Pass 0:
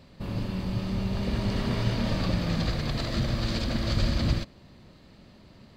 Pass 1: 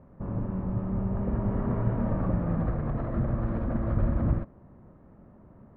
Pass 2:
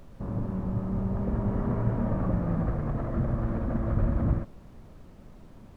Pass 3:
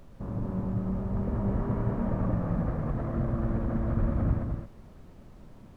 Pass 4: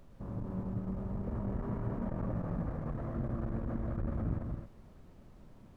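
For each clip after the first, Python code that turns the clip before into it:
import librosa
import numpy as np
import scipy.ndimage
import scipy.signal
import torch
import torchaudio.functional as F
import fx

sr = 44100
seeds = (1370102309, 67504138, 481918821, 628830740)

y1 = scipy.signal.sosfilt(scipy.signal.cheby2(4, 80, 7300.0, 'lowpass', fs=sr, output='sos'), x)
y2 = fx.dmg_noise_colour(y1, sr, seeds[0], colour='brown', level_db=-49.0)
y3 = y2 + 10.0 ** (-5.5 / 20.0) * np.pad(y2, (int(213 * sr / 1000.0), 0))[:len(y2)]
y3 = y3 * librosa.db_to_amplitude(-2.0)
y4 = fx.transformer_sat(y3, sr, knee_hz=150.0)
y4 = y4 * librosa.db_to_amplitude(-5.5)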